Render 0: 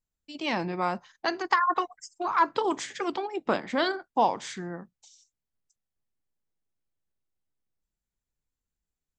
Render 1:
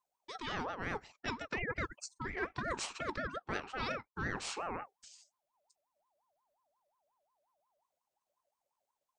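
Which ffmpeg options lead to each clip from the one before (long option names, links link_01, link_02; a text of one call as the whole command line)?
ffmpeg -i in.wav -af "areverse,acompressor=threshold=-34dB:ratio=10,areverse,aeval=exprs='val(0)*sin(2*PI*810*n/s+810*0.3/5.6*sin(2*PI*5.6*n/s))':channel_layout=same,volume=2dB" out.wav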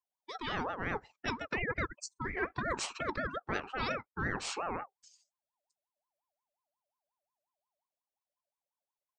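ffmpeg -i in.wav -af "afftdn=noise_reduction=14:noise_floor=-52,volume=3dB" out.wav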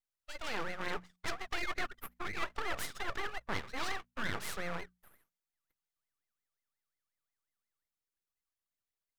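ffmpeg -i in.wav -af "aeval=exprs='abs(val(0))':channel_layout=same,bandreject=frequency=60:width_type=h:width=6,bandreject=frequency=120:width_type=h:width=6,bandreject=frequency=180:width_type=h:width=6,bandreject=frequency=240:width_type=h:width=6" out.wav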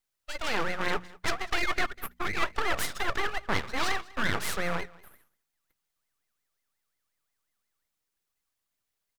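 ffmpeg -i in.wav -af "aecho=1:1:196:0.075,volume=8.5dB" out.wav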